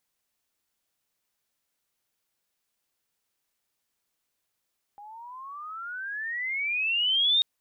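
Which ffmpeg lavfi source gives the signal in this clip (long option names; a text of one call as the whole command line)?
ffmpeg -f lavfi -i "aevalsrc='pow(10,(-18.5+24*(t/2.44-1))/20)*sin(2*PI*807*2.44/(26.5*log(2)/12)*(exp(26.5*log(2)/12*t/2.44)-1))':duration=2.44:sample_rate=44100" out.wav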